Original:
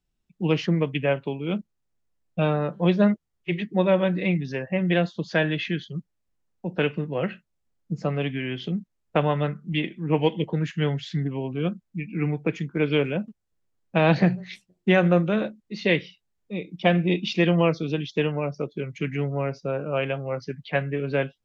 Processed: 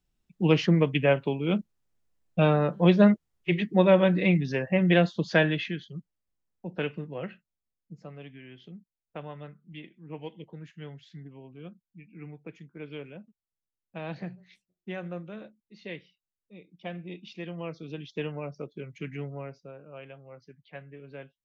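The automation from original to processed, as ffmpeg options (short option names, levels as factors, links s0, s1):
-af "volume=3.16,afade=t=out:st=5.36:d=0.4:silence=0.398107,afade=t=out:st=6.79:d=1.27:silence=0.281838,afade=t=in:st=17.56:d=0.67:silence=0.354813,afade=t=out:st=19.18:d=0.57:silence=0.316228"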